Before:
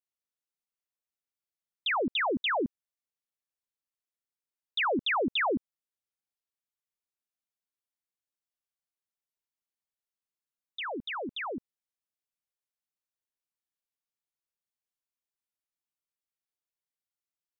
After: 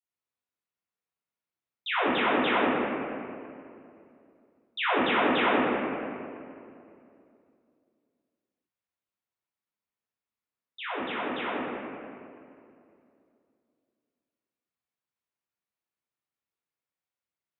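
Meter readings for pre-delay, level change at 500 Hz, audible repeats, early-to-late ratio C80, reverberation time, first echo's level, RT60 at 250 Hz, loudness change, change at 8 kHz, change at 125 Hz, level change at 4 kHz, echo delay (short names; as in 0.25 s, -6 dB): 8 ms, +5.0 dB, none, -1.0 dB, 2.5 s, none, 2.9 s, +2.5 dB, n/a, +5.5 dB, 0.0 dB, none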